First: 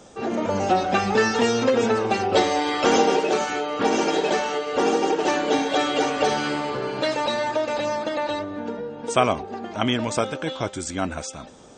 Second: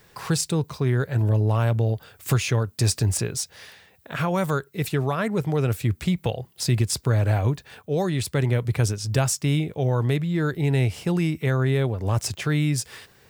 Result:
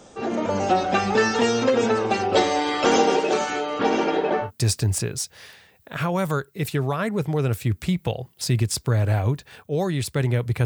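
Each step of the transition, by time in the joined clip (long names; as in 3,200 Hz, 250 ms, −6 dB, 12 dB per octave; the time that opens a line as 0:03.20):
first
0:03.78–0:04.51: low-pass filter 5,900 Hz → 1,200 Hz
0:04.46: continue with second from 0:02.65, crossfade 0.10 s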